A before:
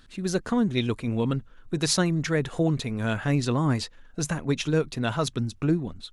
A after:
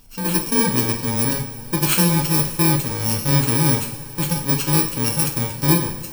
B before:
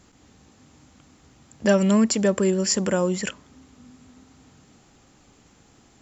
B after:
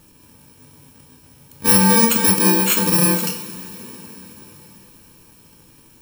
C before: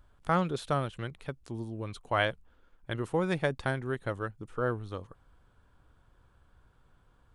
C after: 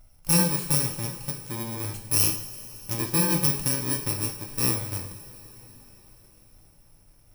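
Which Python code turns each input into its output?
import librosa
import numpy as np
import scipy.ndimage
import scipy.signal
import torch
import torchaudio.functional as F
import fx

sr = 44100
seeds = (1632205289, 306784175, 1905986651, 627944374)

y = fx.bit_reversed(x, sr, seeds[0], block=64)
y = fx.rev_double_slope(y, sr, seeds[1], early_s=0.53, late_s=4.9, knee_db=-18, drr_db=2.0)
y = F.gain(torch.from_numpy(y), 4.0).numpy()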